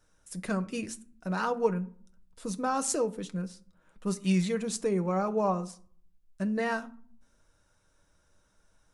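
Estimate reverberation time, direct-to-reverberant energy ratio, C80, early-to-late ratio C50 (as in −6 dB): 0.50 s, 8.0 dB, 23.5 dB, 19.0 dB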